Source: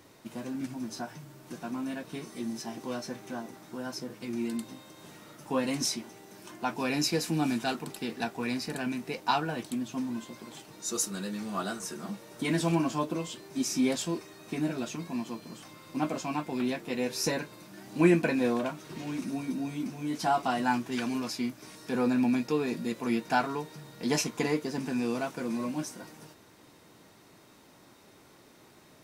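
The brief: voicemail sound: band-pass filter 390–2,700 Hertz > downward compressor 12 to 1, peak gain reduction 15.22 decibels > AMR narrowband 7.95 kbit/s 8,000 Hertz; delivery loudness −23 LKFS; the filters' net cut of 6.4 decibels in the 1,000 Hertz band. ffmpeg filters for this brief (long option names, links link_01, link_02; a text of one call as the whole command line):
ffmpeg -i in.wav -af "highpass=390,lowpass=2700,equalizer=frequency=1000:width_type=o:gain=-8.5,acompressor=threshold=-37dB:ratio=12,volume=21.5dB" -ar 8000 -c:a libopencore_amrnb -b:a 7950 out.amr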